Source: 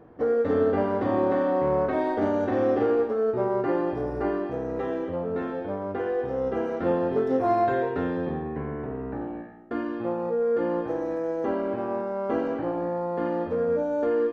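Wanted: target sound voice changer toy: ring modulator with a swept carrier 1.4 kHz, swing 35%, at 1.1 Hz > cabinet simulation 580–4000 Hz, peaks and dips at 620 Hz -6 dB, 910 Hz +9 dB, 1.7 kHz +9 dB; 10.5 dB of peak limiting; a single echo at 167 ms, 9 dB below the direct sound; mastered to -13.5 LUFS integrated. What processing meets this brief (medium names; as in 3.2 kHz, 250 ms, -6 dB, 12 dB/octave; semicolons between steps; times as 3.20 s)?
peak limiter -23 dBFS; delay 167 ms -9 dB; ring modulator with a swept carrier 1.4 kHz, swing 35%, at 1.1 Hz; cabinet simulation 580–4000 Hz, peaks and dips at 620 Hz -6 dB, 910 Hz +9 dB, 1.7 kHz +9 dB; trim +14 dB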